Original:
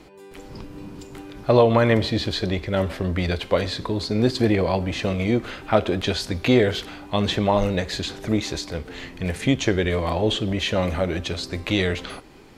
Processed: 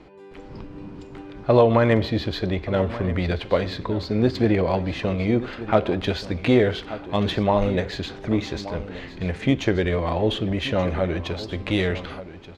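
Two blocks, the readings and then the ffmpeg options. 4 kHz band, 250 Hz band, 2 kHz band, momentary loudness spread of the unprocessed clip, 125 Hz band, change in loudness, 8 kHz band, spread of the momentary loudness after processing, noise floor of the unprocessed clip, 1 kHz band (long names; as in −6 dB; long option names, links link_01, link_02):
−4.5 dB, 0.0 dB, −1.5 dB, 15 LU, 0.0 dB, −0.5 dB, below −10 dB, 13 LU, −44 dBFS, −0.5 dB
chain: -af "highshelf=frequency=4500:gain=-7.5,adynamicsmooth=sensitivity=1.5:basefreq=5600,aecho=1:1:1179:0.188"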